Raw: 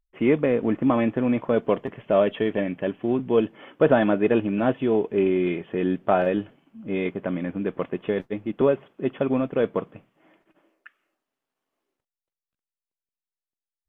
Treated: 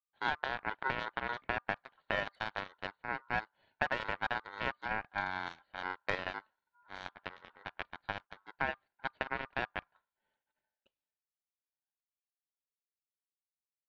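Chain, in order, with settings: Chebyshev shaper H 3 -18 dB, 7 -20 dB, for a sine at -5 dBFS; compression 6:1, threshold -25 dBFS, peak gain reduction 12 dB; ring modulator 1.2 kHz; trim -1.5 dB

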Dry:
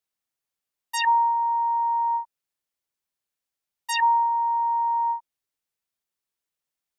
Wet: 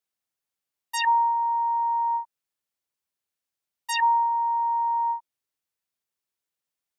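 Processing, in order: high-pass 42 Hz; trim -1 dB

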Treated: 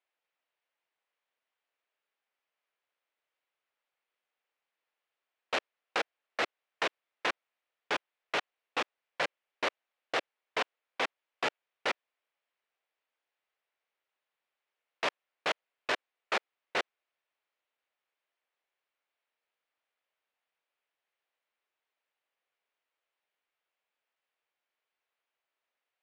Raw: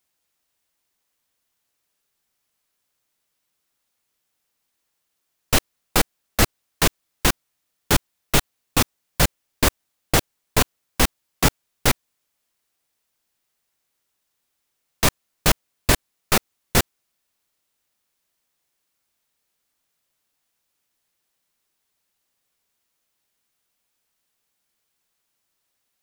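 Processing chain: Chebyshev band-pass 500–2600 Hz, order 2; transformer saturation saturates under 2.4 kHz; trim -5 dB

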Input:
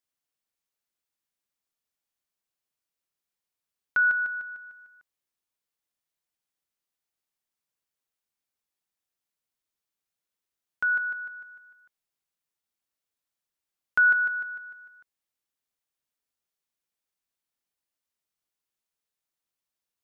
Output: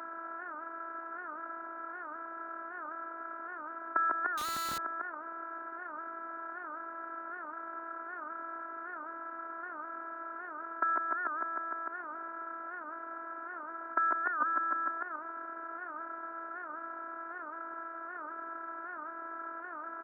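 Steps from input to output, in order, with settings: spectral levelling over time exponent 0.2; low-pass 1.2 kHz 24 dB/octave; on a send: feedback delay 135 ms, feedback 27%, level -7.5 dB; on the sum: robot voice 331 Hz; high-pass 260 Hz 24 dB/octave; 4.38–4.78 s: Schmitt trigger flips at -50.5 dBFS; 14.40–14.91 s: comb 3.7 ms, depth 61%; warped record 78 rpm, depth 160 cents; trim +7 dB

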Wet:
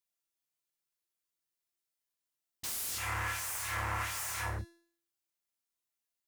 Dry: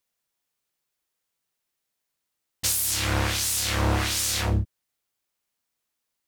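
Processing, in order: treble shelf 4 kHz +5 dB; feedback comb 340 Hz, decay 0.57 s, mix 80%; wavefolder -32.5 dBFS; 2.98–4.59 s: graphic EQ 125/250/1000/2000/4000 Hz +3/-12/+10/+7/-9 dB

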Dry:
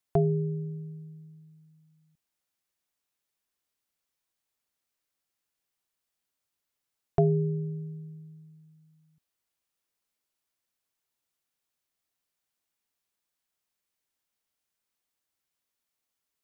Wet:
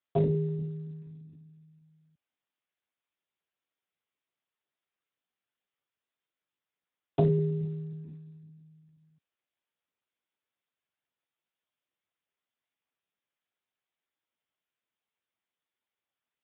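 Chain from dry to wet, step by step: Speex 8 kbps 8 kHz

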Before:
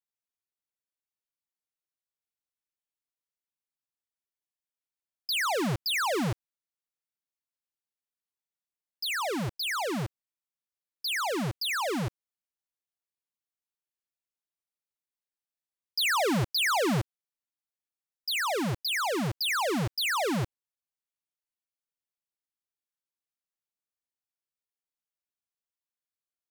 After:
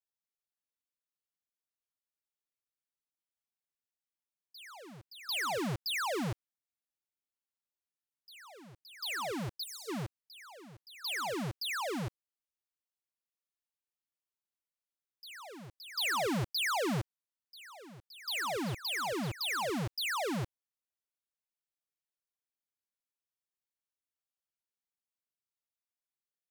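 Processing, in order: reverse echo 745 ms -16.5 dB; time-frequency box 9.57–9.89 s, 470–3600 Hz -24 dB; trim -6 dB

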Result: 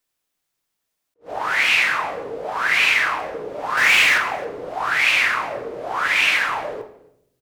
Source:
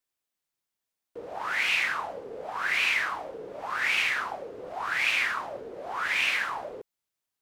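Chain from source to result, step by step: 3.77–4.18 s: power-law waveshaper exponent 0.7; on a send: delay 268 ms -23.5 dB; on the sum: simulated room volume 180 m³, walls mixed, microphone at 0.46 m; attacks held to a fixed rise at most 290 dB/s; trim +8 dB

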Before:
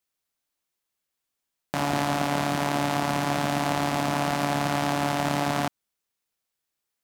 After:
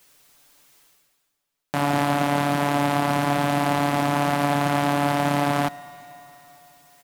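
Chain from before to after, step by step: comb 6.9 ms, depth 72%; reverse; upward compressor, threshold -36 dBFS; reverse; algorithmic reverb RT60 3.9 s, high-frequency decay 0.85×, pre-delay 75 ms, DRR 18.5 dB

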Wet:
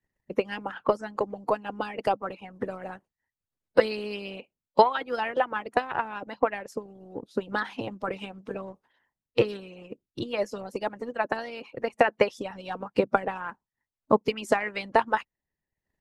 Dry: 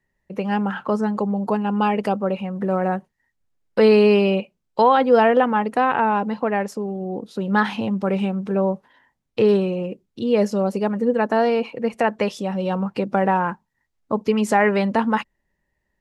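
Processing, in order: transient shaper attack +6 dB, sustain -6 dB; harmonic-percussive split harmonic -18 dB; trim -2.5 dB

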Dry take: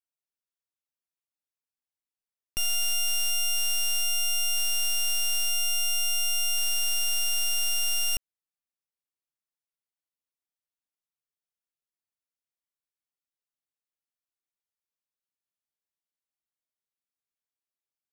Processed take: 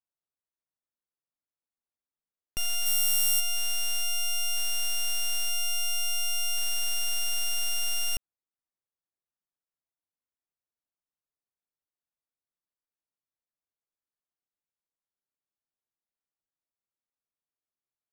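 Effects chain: local Wiener filter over 15 samples; 2.85–3.39 s: treble shelf 11 kHz -> 7.4 kHz +11.5 dB

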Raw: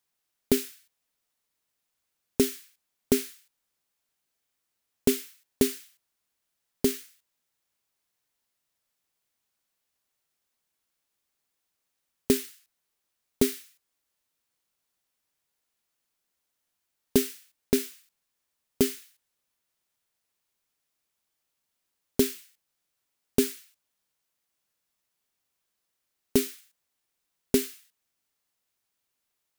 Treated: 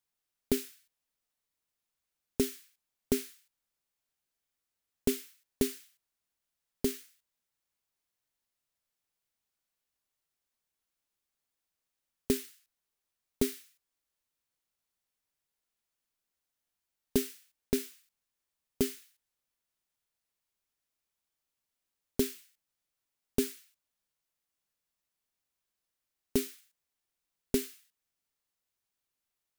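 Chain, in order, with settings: bass shelf 66 Hz +7.5 dB; trim -6.5 dB

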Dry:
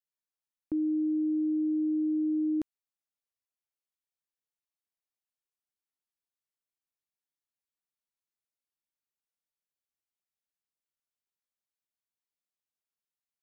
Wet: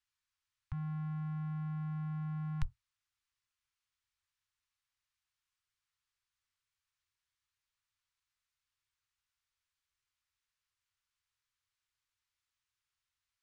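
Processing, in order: octave divider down 1 oct, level 0 dB; inverse Chebyshev band-stop 210–550 Hz, stop band 50 dB; distance through air 67 m; trim +9.5 dB

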